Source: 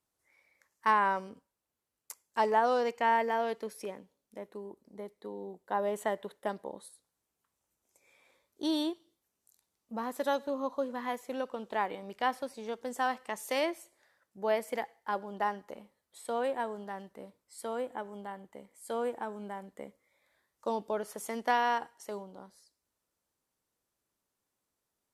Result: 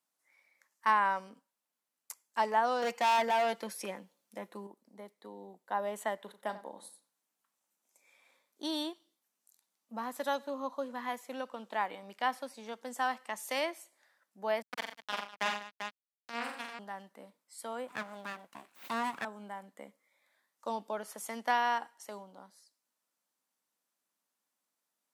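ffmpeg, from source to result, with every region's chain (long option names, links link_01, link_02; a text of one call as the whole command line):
ffmpeg -i in.wav -filter_complex "[0:a]asettb=1/sr,asplit=3[link_01][link_02][link_03];[link_01]atrim=end=2.824[link_04];[link_02]atrim=start=2.82:end=4.67,asetpts=PTS-STARTPTS,afade=type=in:duration=0.004:curve=qsin,afade=type=out:start_time=1.846:duration=0.004:curve=qsin,aecho=1:1:5.8:0.42,atrim=end_sample=81585,acontrast=46,asoftclip=type=hard:threshold=-23dB[link_05];[link_03]atrim=start=4.666[link_06];[link_04][link_05]acrossfade=duration=0.004:curve1=hsin:curve2=qsin[link_07];[link_07][link_06]acrossfade=duration=0.004:curve1=qsin:curve2=hsin,asettb=1/sr,asplit=3[link_08][link_09][link_10];[link_08]atrim=end=6.174[link_11];[link_09]atrim=start=6.17:end=8.63,asetpts=PTS-STARTPTS,afade=type=in:duration=0.004:curve=qsin,afade=type=out:start_time=2.456:duration=0.004:curve=qsin,asplit=2[link_12][link_13];[link_13]adelay=37,volume=-13dB[link_14];[link_12][link_14]amix=inputs=2:normalize=0,atrim=end_sample=108486,asplit=2[link_15][link_16];[link_16]adelay=91,lowpass=frequency=2300:poles=1,volume=-13.5dB,asplit=2[link_17][link_18];[link_18]adelay=91,lowpass=frequency=2300:poles=1,volume=0.26,asplit=2[link_19][link_20];[link_20]adelay=91,lowpass=frequency=2300:poles=1,volume=0.26[link_21];[link_15][link_17][link_19][link_21]amix=inputs=4:normalize=0,atrim=end_sample=108486[link_22];[link_10]atrim=start=8.626[link_23];[link_11][link_22]acrossfade=duration=0.004:curve1=hsin:curve2=qsin[link_24];[link_24][link_23]acrossfade=duration=0.004:curve1=qsin:curve2=hsin,asettb=1/sr,asplit=3[link_25][link_26][link_27];[link_25]atrim=end=14.624[link_28];[link_26]atrim=start=14.62:end=16.79,asetpts=PTS-STARTPTS,afade=type=in:duration=0.004:curve=qsin,afade=type=out:start_time=2.166:duration=0.004:curve=qsin,acrusher=bits=3:mix=0:aa=0.5,aecho=1:1:47|90|124|197|392:0.596|0.398|0.178|0.168|0.447,atrim=end_sample=95697[link_29];[link_27]atrim=start=16.786[link_30];[link_28][link_29]acrossfade=duration=0.004:curve1=hsin:curve2=qsin[link_31];[link_31][link_30]acrossfade=duration=0.004:curve1=qsin:curve2=hsin,asettb=1/sr,asplit=3[link_32][link_33][link_34];[link_32]atrim=end=17.884[link_35];[link_33]atrim=start=17.88:end=19.25,asetpts=PTS-STARTPTS,afade=type=in:duration=0.004:curve=qsin,afade=type=out:start_time=1.366:duration=0.004:curve=qsin,acontrast=35,aeval=exprs='abs(val(0))':channel_layout=same[link_36];[link_34]atrim=start=19.246[link_37];[link_35][link_36]acrossfade=duration=0.004:curve1=hsin:curve2=qsin[link_38];[link_38][link_37]acrossfade=duration=0.004:curve1=qsin:curve2=hsin,highpass=frequency=210:width=0.5412,highpass=frequency=210:width=1.3066,equalizer=frequency=390:width_type=o:width=0.91:gain=-9.5" out.wav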